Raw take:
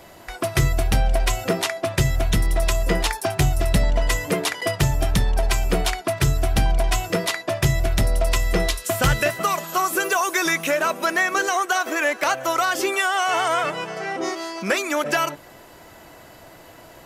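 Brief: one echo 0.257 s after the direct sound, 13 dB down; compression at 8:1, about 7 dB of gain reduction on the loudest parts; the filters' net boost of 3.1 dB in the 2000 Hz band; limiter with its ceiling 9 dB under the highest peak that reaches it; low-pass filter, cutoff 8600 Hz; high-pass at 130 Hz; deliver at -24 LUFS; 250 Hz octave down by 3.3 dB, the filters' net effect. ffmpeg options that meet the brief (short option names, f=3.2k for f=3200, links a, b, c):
-af "highpass=130,lowpass=8.6k,equalizer=f=250:t=o:g=-4.5,equalizer=f=2k:t=o:g=4,acompressor=threshold=-22dB:ratio=8,alimiter=limit=-17dB:level=0:latency=1,aecho=1:1:257:0.224,volume=3.5dB"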